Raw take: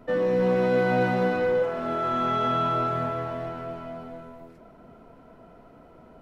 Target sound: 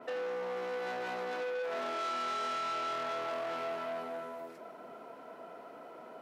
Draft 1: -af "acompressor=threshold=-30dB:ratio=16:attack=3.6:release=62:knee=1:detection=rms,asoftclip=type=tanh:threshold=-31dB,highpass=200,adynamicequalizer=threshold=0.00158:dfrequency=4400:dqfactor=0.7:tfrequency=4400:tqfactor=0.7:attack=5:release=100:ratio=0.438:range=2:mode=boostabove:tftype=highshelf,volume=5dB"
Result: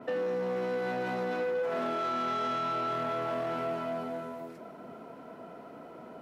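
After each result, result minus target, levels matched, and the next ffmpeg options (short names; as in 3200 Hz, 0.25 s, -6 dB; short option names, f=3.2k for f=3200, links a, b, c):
250 Hz band +7.0 dB; soft clip: distortion -6 dB
-af "acompressor=threshold=-30dB:ratio=16:attack=3.6:release=62:knee=1:detection=rms,asoftclip=type=tanh:threshold=-31dB,highpass=430,adynamicequalizer=threshold=0.00158:dfrequency=4400:dqfactor=0.7:tfrequency=4400:tqfactor=0.7:attack=5:release=100:ratio=0.438:range=2:mode=boostabove:tftype=highshelf,volume=5dB"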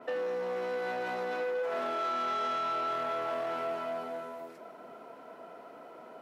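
soft clip: distortion -6 dB
-af "acompressor=threshold=-30dB:ratio=16:attack=3.6:release=62:knee=1:detection=rms,asoftclip=type=tanh:threshold=-37dB,highpass=430,adynamicequalizer=threshold=0.00158:dfrequency=4400:dqfactor=0.7:tfrequency=4400:tqfactor=0.7:attack=5:release=100:ratio=0.438:range=2:mode=boostabove:tftype=highshelf,volume=5dB"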